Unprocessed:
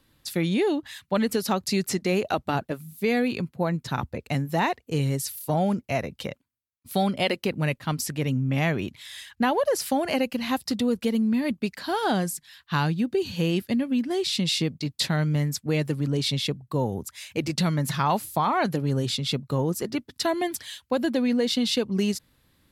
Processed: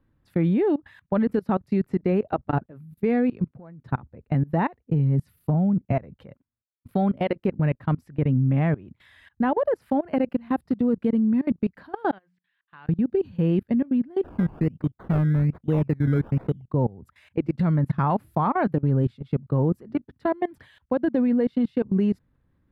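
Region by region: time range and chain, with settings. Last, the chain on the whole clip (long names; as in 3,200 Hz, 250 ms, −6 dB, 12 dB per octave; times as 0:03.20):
0:03.45–0:03.86: high-pass filter 110 Hz 6 dB per octave + downward compressor 5 to 1, threshold −32 dBFS
0:04.84–0:05.93: parametric band 180 Hz +11 dB 1.1 octaves + notch filter 1,600 Hz, Q 17 + downward compressor, threshold −19 dBFS
0:12.11–0:12.89: low-pass filter 3,200 Hz 24 dB per octave + first difference + mains-hum notches 60/120/180 Hz
0:14.23–0:16.66: low-pass filter 3,600 Hz + sample-and-hold swept by an LFO 19×, swing 60% 1.2 Hz
whole clip: low-shelf EQ 220 Hz +7 dB; output level in coarse steps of 23 dB; drawn EQ curve 370 Hz 0 dB, 1,600 Hz −3 dB, 6,400 Hz −29 dB, 11,000 Hz −24 dB; level +3 dB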